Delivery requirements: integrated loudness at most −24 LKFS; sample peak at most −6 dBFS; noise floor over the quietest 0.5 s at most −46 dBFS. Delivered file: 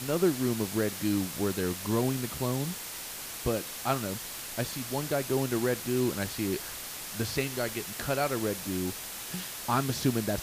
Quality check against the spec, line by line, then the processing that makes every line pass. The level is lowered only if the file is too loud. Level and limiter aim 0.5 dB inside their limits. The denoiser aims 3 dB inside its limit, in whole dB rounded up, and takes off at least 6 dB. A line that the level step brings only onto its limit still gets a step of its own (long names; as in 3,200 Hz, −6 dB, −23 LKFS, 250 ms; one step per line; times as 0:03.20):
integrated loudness −31.0 LKFS: in spec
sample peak −13.5 dBFS: in spec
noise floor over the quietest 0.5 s −40 dBFS: out of spec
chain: broadband denoise 9 dB, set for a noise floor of −40 dBFS